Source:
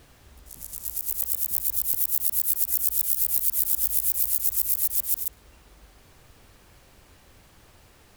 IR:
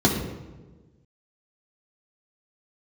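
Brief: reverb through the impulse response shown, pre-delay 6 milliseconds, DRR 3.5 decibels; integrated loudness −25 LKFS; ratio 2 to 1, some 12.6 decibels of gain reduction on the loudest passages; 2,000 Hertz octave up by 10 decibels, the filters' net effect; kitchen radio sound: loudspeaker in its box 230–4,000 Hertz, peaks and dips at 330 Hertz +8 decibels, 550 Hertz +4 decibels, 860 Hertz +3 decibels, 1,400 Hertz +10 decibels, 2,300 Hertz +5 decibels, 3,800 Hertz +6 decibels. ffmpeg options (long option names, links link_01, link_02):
-filter_complex "[0:a]equalizer=frequency=2000:width_type=o:gain=6.5,acompressor=threshold=-41dB:ratio=2,asplit=2[link_01][link_02];[1:a]atrim=start_sample=2205,adelay=6[link_03];[link_02][link_03]afir=irnorm=-1:irlink=0,volume=-20.5dB[link_04];[link_01][link_04]amix=inputs=2:normalize=0,highpass=230,equalizer=frequency=330:width_type=q:width=4:gain=8,equalizer=frequency=550:width_type=q:width=4:gain=4,equalizer=frequency=860:width_type=q:width=4:gain=3,equalizer=frequency=1400:width_type=q:width=4:gain=10,equalizer=frequency=2300:width_type=q:width=4:gain=5,equalizer=frequency=3800:width_type=q:width=4:gain=6,lowpass=frequency=4000:width=0.5412,lowpass=frequency=4000:width=1.3066,volume=26.5dB"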